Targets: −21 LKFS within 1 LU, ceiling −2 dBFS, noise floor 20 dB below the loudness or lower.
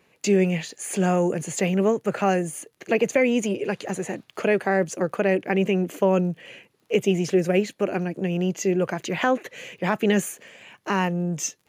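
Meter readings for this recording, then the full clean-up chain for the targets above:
crackle rate 24 per second; integrated loudness −24.0 LKFS; sample peak −6.0 dBFS; target loudness −21.0 LKFS
→ click removal
level +3 dB

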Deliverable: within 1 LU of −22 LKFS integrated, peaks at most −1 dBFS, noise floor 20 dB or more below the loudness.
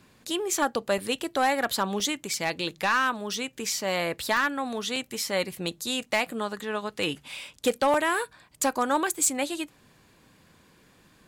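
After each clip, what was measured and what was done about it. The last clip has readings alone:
share of clipped samples 0.3%; peaks flattened at −16.0 dBFS; number of dropouts 6; longest dropout 1.9 ms; integrated loudness −27.5 LKFS; sample peak −16.0 dBFS; target loudness −22.0 LKFS
→ clipped peaks rebuilt −16 dBFS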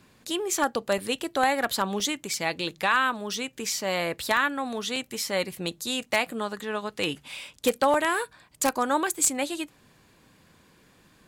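share of clipped samples 0.0%; number of dropouts 6; longest dropout 1.9 ms
→ repair the gap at 0:00.98/0:02.00/0:02.81/0:04.37/0:04.96/0:07.94, 1.9 ms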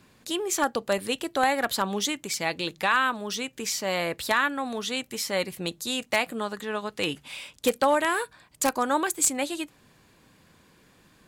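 number of dropouts 0; integrated loudness −27.0 LKFS; sample peak −7.0 dBFS; target loudness −22.0 LKFS
→ level +5 dB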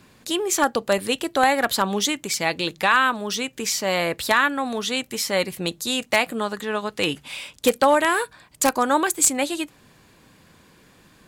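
integrated loudness −22.0 LKFS; sample peak −2.0 dBFS; background noise floor −55 dBFS

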